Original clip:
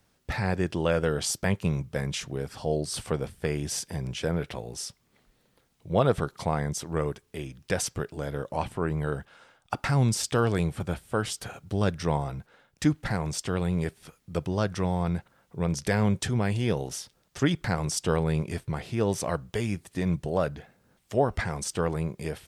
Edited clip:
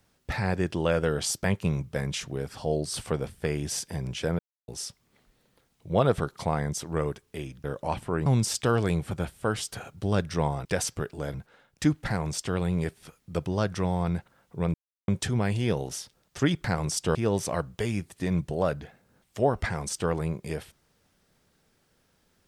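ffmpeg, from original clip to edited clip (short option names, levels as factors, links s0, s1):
-filter_complex "[0:a]asplit=10[s0][s1][s2][s3][s4][s5][s6][s7][s8][s9];[s0]atrim=end=4.39,asetpts=PTS-STARTPTS,afade=t=out:st=4.386:d=0.004:c=hsin[s10];[s1]atrim=start=4.39:end=4.68,asetpts=PTS-STARTPTS,volume=0[s11];[s2]atrim=start=4.68:end=7.642,asetpts=PTS-STARTPTS,afade=t=in:d=0.004:c=hsin[s12];[s3]atrim=start=8.328:end=8.952[s13];[s4]atrim=start=9.948:end=12.342[s14];[s5]atrim=start=7.638:end=8.332[s15];[s6]atrim=start=12.338:end=15.74,asetpts=PTS-STARTPTS,afade=t=out:st=3.398:d=0.004:c=hsin[s16];[s7]atrim=start=15.74:end=16.08,asetpts=PTS-STARTPTS,volume=0[s17];[s8]atrim=start=16.08:end=18.152,asetpts=PTS-STARTPTS,afade=t=in:d=0.004:c=hsin[s18];[s9]atrim=start=18.898[s19];[s10][s11][s12]concat=n=3:v=0:a=1[s20];[s20][s13]acrossfade=d=0.004:c1=hsin:c2=hsin[s21];[s21][s14]acrossfade=d=0.004:c1=hsin:c2=hsin[s22];[s22][s15]acrossfade=d=0.004:c1=hsin:c2=hsin[s23];[s16][s17][s18]concat=n=3:v=0:a=1[s24];[s23][s24]acrossfade=d=0.004:c1=hsin:c2=hsin[s25];[s25][s19]acrossfade=d=0.004:c1=hsin:c2=hsin"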